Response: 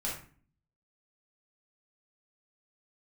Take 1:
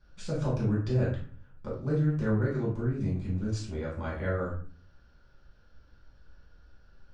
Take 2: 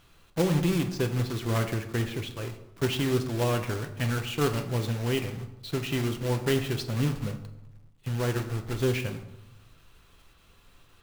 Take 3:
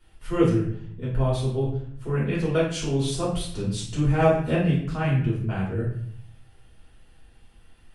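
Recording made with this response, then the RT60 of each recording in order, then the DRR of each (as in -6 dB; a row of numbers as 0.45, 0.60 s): 1; 0.40, 0.95, 0.60 s; -6.0, 5.5, -8.0 dB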